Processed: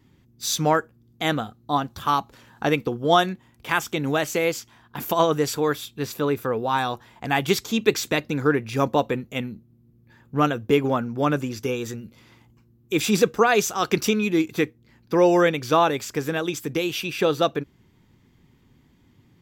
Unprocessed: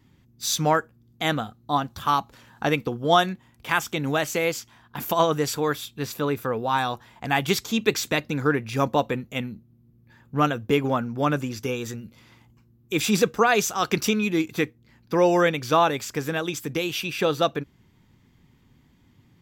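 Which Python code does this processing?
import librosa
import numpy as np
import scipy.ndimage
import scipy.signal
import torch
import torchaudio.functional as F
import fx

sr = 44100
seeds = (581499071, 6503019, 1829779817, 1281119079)

y = fx.peak_eq(x, sr, hz=380.0, db=3.5, octaves=0.86)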